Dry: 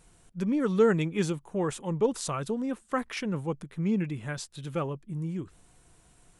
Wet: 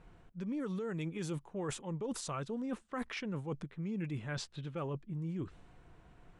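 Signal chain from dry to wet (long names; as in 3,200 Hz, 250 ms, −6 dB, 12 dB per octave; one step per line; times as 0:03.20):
low-pass that shuts in the quiet parts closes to 2,100 Hz, open at −23.5 dBFS
brickwall limiter −22 dBFS, peak gain reduction 11.5 dB
reversed playback
downward compressor, threshold −38 dBFS, peak gain reduction 12 dB
reversed playback
level +2 dB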